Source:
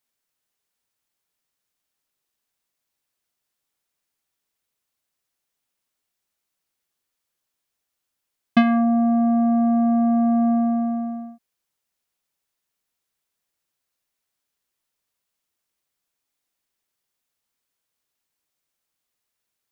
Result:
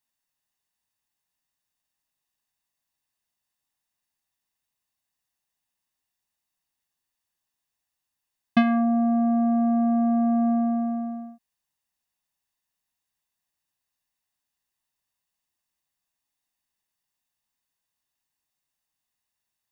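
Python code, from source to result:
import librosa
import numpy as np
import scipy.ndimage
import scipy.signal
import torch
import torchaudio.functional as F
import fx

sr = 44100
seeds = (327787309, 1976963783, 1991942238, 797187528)

y = x + 0.47 * np.pad(x, (int(1.1 * sr / 1000.0), 0))[:len(x)]
y = y * librosa.db_to_amplitude(-4.0)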